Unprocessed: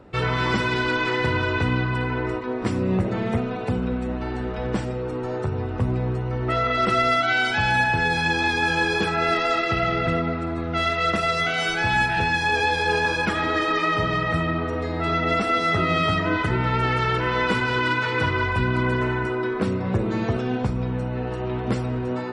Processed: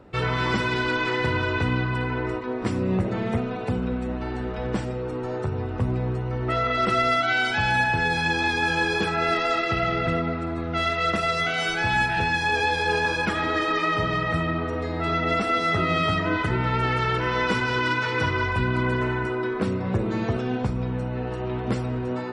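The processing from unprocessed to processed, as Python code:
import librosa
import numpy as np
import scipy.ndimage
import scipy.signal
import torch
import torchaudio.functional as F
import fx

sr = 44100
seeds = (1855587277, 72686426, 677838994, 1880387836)

y = fx.peak_eq(x, sr, hz=5600.0, db=7.0, octaves=0.27, at=(17.21, 18.55))
y = y * 10.0 ** (-1.5 / 20.0)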